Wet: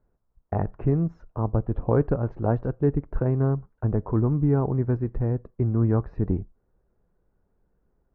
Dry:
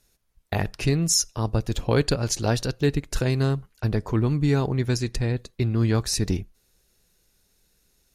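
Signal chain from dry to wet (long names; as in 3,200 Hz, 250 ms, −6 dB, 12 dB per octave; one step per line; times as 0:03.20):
low-pass filter 1,200 Hz 24 dB per octave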